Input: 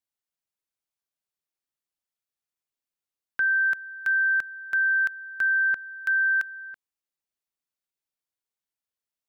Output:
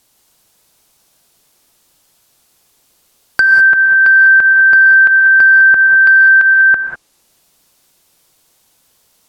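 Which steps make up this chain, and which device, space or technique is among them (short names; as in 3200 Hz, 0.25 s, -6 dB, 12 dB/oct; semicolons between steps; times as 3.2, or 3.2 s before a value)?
loud club master (compressor 2:1, threshold -29 dBFS, peak gain reduction 4.5 dB; hard clip -24 dBFS, distortion -26 dB; maximiser +34.5 dB); treble ducked by the level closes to 1900 Hz, closed at -4 dBFS; bell 1900 Hz -5.5 dB 1.3 oct; 3.53–4.01 comb 6.2 ms, depth 33%; non-linear reverb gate 0.22 s rising, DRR 3.5 dB; gain +1 dB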